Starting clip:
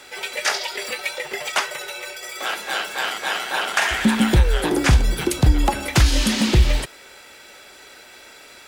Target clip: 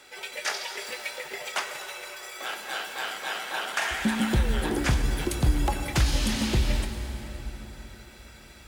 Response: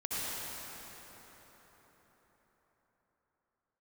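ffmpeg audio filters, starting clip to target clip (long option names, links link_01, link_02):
-filter_complex "[0:a]asplit=2[link_01][link_02];[1:a]atrim=start_sample=2205,highshelf=frequency=11000:gain=11,adelay=24[link_03];[link_02][link_03]afir=irnorm=-1:irlink=0,volume=-13dB[link_04];[link_01][link_04]amix=inputs=2:normalize=0,volume=-8.5dB"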